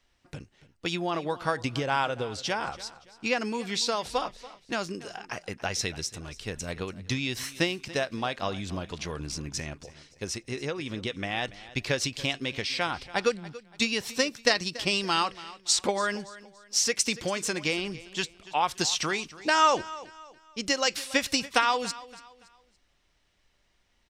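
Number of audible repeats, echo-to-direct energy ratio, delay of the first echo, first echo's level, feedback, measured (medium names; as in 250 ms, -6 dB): 2, -17.5 dB, 284 ms, -18.0 dB, 35%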